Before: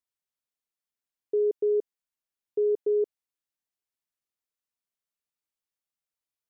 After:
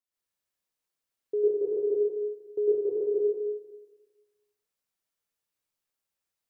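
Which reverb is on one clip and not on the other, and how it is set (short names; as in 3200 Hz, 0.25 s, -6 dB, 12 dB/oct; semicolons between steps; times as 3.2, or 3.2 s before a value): plate-style reverb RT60 1.3 s, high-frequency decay 0.85×, pre-delay 95 ms, DRR -8 dB; gain -3.5 dB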